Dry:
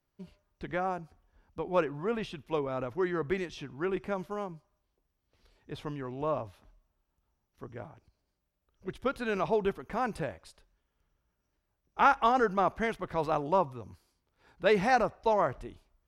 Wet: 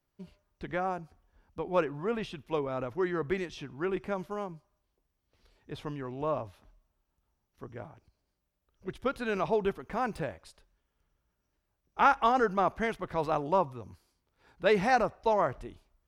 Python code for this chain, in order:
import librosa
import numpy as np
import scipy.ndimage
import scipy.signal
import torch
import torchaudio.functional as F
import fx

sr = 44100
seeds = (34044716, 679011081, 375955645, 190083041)

y = fx.median_filter(x, sr, points=3, at=(9.83, 10.32))